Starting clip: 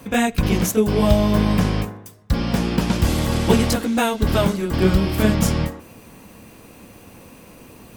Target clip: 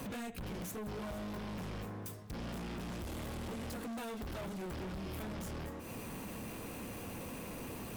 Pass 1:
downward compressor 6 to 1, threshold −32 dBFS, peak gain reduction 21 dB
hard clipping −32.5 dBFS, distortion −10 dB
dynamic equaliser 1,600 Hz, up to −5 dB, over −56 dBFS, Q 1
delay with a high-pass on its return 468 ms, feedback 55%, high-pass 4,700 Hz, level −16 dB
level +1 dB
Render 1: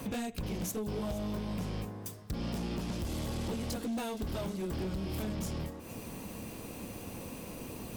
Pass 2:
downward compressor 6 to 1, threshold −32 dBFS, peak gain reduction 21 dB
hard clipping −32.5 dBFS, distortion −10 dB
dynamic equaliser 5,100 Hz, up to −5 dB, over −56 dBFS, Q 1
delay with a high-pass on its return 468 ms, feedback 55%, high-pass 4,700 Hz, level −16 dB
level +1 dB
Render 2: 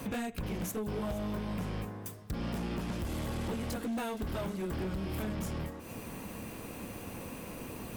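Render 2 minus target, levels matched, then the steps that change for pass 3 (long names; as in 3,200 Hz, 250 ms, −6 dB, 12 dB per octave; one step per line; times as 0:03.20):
hard clipping: distortion −6 dB
change: hard clipping −41 dBFS, distortion −4 dB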